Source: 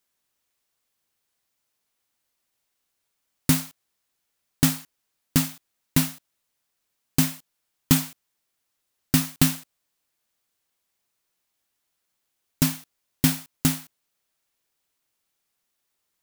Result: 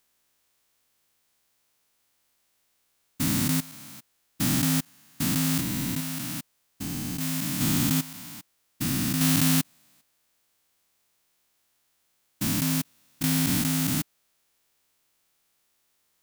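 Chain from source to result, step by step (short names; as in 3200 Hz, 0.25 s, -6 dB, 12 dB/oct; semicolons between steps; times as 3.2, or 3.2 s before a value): stepped spectrum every 0.4 s; gain +8 dB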